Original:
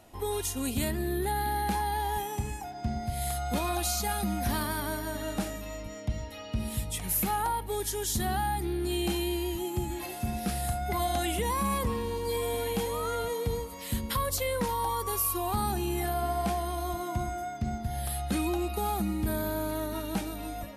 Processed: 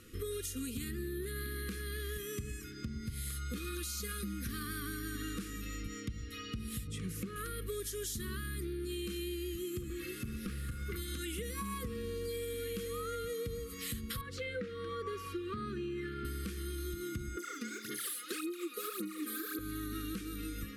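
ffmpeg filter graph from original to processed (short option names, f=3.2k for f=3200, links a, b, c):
-filter_complex "[0:a]asettb=1/sr,asplit=3[a][b][c];[a]atrim=end=6.874[d];[b]atrim=start=6.87:end=7.36,asetpts=PTS-STARTPTS,afade=t=in:d=0.004:c=qsin,afade=t=out:st=0.486:d=0.004:c=qsin,highpass=100,lowpass=7.4k,tiltshelf=f=890:g=6[e];[c]atrim=start=7.356[f];[d][e]acrossfade=d=0.004:c1=hsin:c2=qsin[g];[g][f]acrossfade=d=0.004:c1=qsin:c2=hsin,asettb=1/sr,asplit=3[h][i][j];[h]atrim=end=9.814[k];[i]atrim=start=9.81:end=10.96,asetpts=PTS-STARTPTS,afade=t=in:d=0.004:c=qsin,afade=t=out:st=1.146:d=0.004:c=qsin,acrossover=split=3100[l][m];[m]acompressor=threshold=-47dB:ratio=4:attack=1:release=60[n];[l][n]amix=inputs=2:normalize=0,aeval=exprs='clip(val(0),-1,0.0299)':c=same[o];[j]atrim=start=10.956[p];[k][o]acrossfade=d=0.004:c1=hsin:c2=qsin[q];[q][p]acrossfade=d=0.004:c1=qsin:c2=hsin,asettb=1/sr,asplit=3[r][s][t];[r]atrim=end=14.214[u];[s]atrim=start=14.21:end=16.25,asetpts=PTS-STARTPTS,afade=t=in:d=0.004:c=qsin,afade=t=out:st=2.036:d=0.004:c=qsin,highpass=120,lowpass=2.7k,bandreject=f=1.1k:w=9.8[v];[t]atrim=start=16.246[w];[u][v]acrossfade=d=0.004:c1=hsin:c2=qsin[x];[x][w]acrossfade=d=0.004:c1=qsin:c2=hsin,asettb=1/sr,asplit=3[y][z][aa];[y]atrim=end=17.374[ab];[z]atrim=start=17.37:end=19.59,asetpts=PTS-STARTPTS,afade=t=in:d=0.004:c=qsin,afade=t=out:st=2.216:d=0.004:c=qsin,aphaser=in_gain=1:out_gain=1:delay=4.2:decay=0.78:speed=1.8:type=sinusoidal,highpass=f=320:w=0.5412,highpass=f=320:w=1.3066[ac];[aa]atrim=start=19.586[ad];[ab][ac]acrossfade=d=0.004:c1=hsin:c2=qsin[ae];[ae][ad]acrossfade=d=0.004:c1=qsin:c2=hsin,afftfilt=real='re*(1-between(b*sr/4096,520,1100))':imag='im*(1-between(b*sr/4096,520,1100))':win_size=4096:overlap=0.75,alimiter=level_in=2dB:limit=-24dB:level=0:latency=1:release=442,volume=-2dB,acompressor=threshold=-39dB:ratio=4,volume=2dB"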